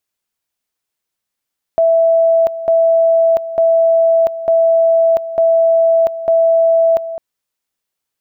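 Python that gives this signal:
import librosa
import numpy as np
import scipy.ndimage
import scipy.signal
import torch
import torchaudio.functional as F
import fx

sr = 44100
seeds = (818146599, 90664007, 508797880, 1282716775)

y = fx.two_level_tone(sr, hz=660.0, level_db=-8.0, drop_db=13.0, high_s=0.69, low_s=0.21, rounds=6)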